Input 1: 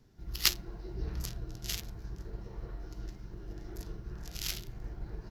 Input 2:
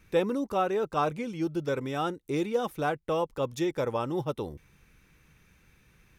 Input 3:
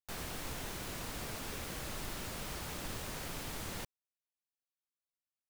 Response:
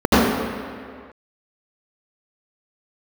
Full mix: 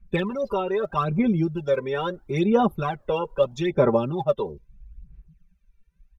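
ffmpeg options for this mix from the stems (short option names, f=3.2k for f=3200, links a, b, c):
-filter_complex "[0:a]volume=-12.5dB[a];[1:a]aecho=1:1:5.1:0.76,volume=3dB,asplit=2[b][c];[2:a]adelay=100,volume=-15dB[d];[c]apad=whole_len=233776[e];[a][e]sidechaincompress=threshold=-41dB:ratio=5:attack=48:release=238[f];[f][b][d]amix=inputs=3:normalize=0,afftdn=nr=28:nf=-40,acrossover=split=430|4500[g][h][i];[g]acompressor=threshold=-26dB:ratio=4[j];[h]acompressor=threshold=-26dB:ratio=4[k];[i]acompressor=threshold=-56dB:ratio=4[l];[j][k][l]amix=inputs=3:normalize=0,aphaser=in_gain=1:out_gain=1:delay=2.2:decay=0.69:speed=0.77:type=sinusoidal"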